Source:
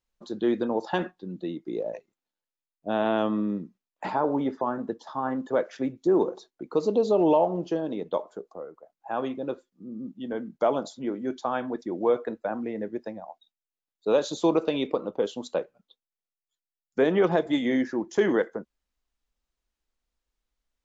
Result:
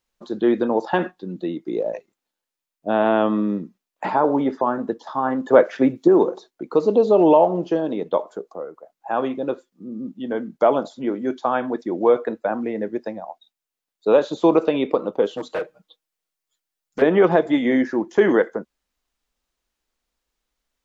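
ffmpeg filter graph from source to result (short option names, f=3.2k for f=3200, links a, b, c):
-filter_complex "[0:a]asettb=1/sr,asplit=3[a][b][c];[a]atrim=end=5.474[d];[b]atrim=start=5.47:end=6.08,asetpts=PTS-STARTPTS,afade=t=in:d=0.004:c=qsin,afade=t=out:st=0.606:d=0.004:c=qsin,highpass=55,acontrast=35[e];[c]atrim=start=6.076[f];[d][e]acrossfade=d=0.004:c1=hsin:c2=qsin[g];[g][f]acrossfade=d=0.004:c1=qsin:c2=hsin,asettb=1/sr,asplit=3[h][i][j];[h]atrim=end=15.304[k];[i]atrim=start=15.3:end=17.02,asetpts=PTS-STARTPTS,afade=t=in:d=0.004:c=qsin,afade=t=out:st=1.716:d=0.004:c=qsin,aecho=1:1:6.4:0.96,atrim=end_sample=75852,asoftclip=type=hard:threshold=-29dB[l];[j]atrim=start=17.016[m];[k][l]acrossfade=d=0.004:c1=hsin:c2=qsin[n];[n][m]acrossfade=d=0.004:c1=qsin:c2=hsin,acrossover=split=2900[o][p];[p]acompressor=threshold=-56dB:ratio=4:attack=1:release=60[q];[o][q]amix=inputs=2:normalize=0,lowshelf=f=120:g=-8.5,volume=7.5dB"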